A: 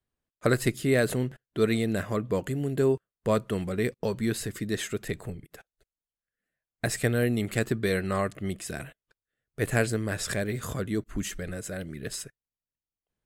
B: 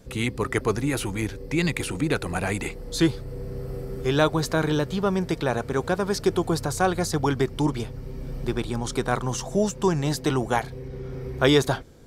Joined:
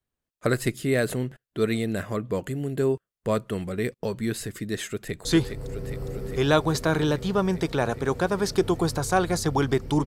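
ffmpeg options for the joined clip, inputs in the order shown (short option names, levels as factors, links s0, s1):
-filter_complex "[0:a]apad=whole_dur=10.06,atrim=end=10.06,atrim=end=5.252[s0];[1:a]atrim=start=2.928:end=7.74[s1];[s0][s1]acrossfade=d=0.004:c1=hsin:c2=hsin,asplit=2[s2][s3];[s3]afade=t=in:st=4.87:d=0.01,afade=t=out:st=5.25:d=0.01,aecho=0:1:410|820|1230|1640|2050|2460|2870|3280|3690|4100|4510|4920:0.530884|0.424708|0.339766|0.271813|0.21745|0.17396|0.139168|0.111335|0.0890676|0.0712541|0.0570033|0.0456026[s4];[s2][s4]amix=inputs=2:normalize=0"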